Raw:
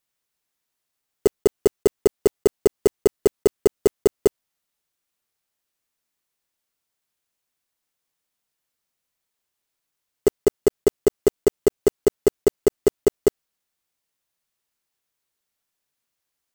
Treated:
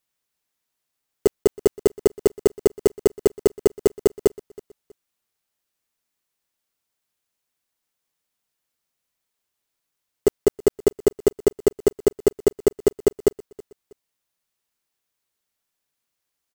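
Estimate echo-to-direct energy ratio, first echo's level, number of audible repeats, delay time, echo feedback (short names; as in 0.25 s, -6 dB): -21.5 dB, -22.0 dB, 2, 0.322 s, 34%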